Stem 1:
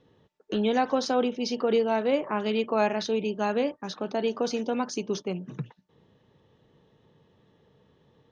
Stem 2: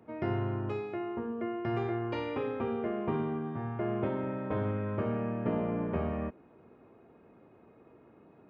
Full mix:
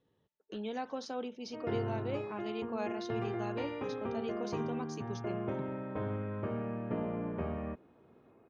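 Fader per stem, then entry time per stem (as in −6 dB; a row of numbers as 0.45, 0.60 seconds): −14.0, −4.5 decibels; 0.00, 1.45 seconds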